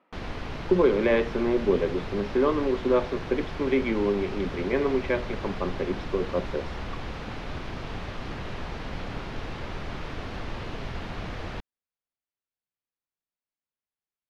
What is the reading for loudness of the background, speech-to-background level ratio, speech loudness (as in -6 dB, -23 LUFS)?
-36.5 LUFS, 10.0 dB, -26.5 LUFS